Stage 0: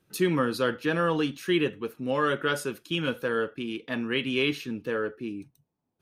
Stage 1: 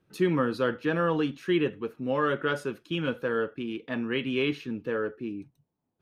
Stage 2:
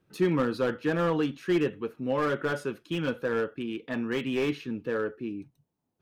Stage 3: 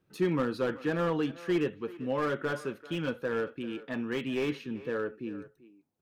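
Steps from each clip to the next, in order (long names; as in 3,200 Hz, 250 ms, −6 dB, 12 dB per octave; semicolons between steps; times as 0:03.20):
low-pass filter 2,100 Hz 6 dB per octave
slew-rate limiting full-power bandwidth 60 Hz
far-end echo of a speakerphone 390 ms, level −16 dB; level −3 dB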